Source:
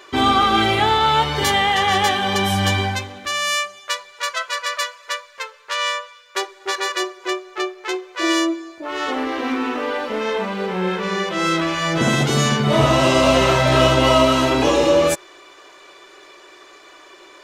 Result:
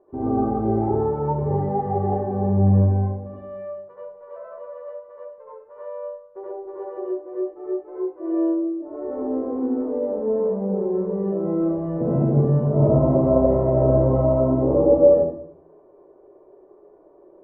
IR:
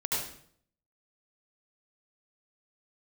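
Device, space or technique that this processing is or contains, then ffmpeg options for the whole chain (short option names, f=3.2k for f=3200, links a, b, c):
next room: -filter_complex "[0:a]lowpass=f=660:w=0.5412,lowpass=f=660:w=1.3066[a];[1:a]atrim=start_sample=2205[b];[a][b]afir=irnorm=-1:irlink=0,volume=-7dB"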